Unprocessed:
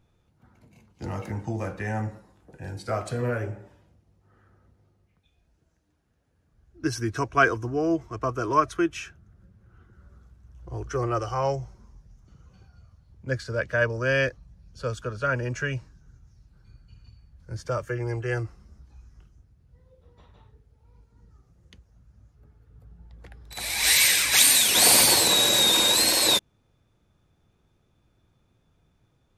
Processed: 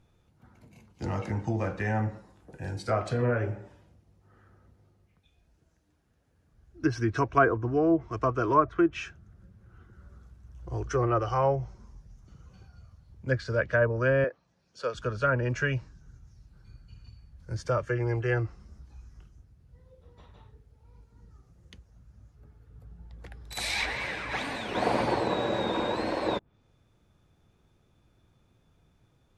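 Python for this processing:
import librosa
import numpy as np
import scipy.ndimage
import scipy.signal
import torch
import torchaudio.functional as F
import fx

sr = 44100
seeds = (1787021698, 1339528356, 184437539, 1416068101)

y = fx.env_lowpass_down(x, sr, base_hz=1100.0, full_db=-19.5)
y = fx.bandpass_edges(y, sr, low_hz=370.0, high_hz=7300.0, at=(14.24, 14.95))
y = F.gain(torch.from_numpy(y), 1.0).numpy()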